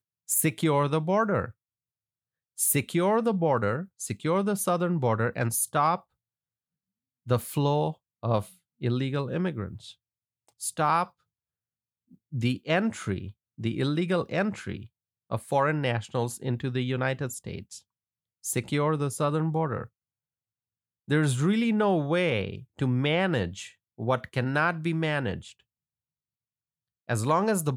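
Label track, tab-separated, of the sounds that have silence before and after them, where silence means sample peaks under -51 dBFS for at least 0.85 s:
2.580000	6.020000	sound
7.260000	11.100000	sound
12.110000	19.870000	sound
21.080000	25.600000	sound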